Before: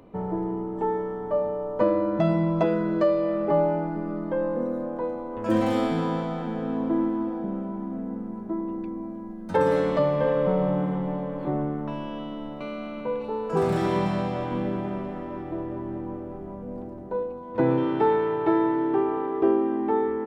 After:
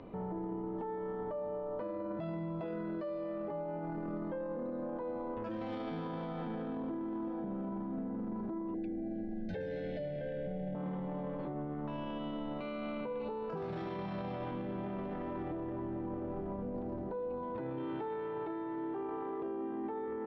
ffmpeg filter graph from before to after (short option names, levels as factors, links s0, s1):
-filter_complex "[0:a]asettb=1/sr,asplit=3[s0][s1][s2];[s0]atrim=end=8.744[s3];[s1]atrim=start=8.74:end=10.75,asetpts=PTS-STARTPTS,afade=t=in:d=0.004:c=qsin,afade=t=out:st=2.006:d=0.004:c=qsin,bandreject=f=50:t=h:w=6,bandreject=f=100:t=h:w=6,bandreject=f=150:t=h:w=6,bandreject=f=200:t=h:w=6,bandreject=f=250:t=h:w=6,bandreject=f=300:t=h:w=6,bandreject=f=350:t=h:w=6,asubboost=boost=5:cutoff=160,asuperstop=centerf=1100:order=20:qfactor=1.7[s4];[s2]atrim=start=10.746[s5];[s3][s4]acrossfade=d=0.004:c1=hsin:c2=qsin[s6];[s6][s5]acrossfade=d=0.004:c1=qsin:c2=hsin,lowpass=f=4600:w=0.5412,lowpass=f=4600:w=1.3066,acompressor=threshold=0.0282:ratio=6,alimiter=level_in=2.99:limit=0.0631:level=0:latency=1:release=12,volume=0.335,volume=1.12"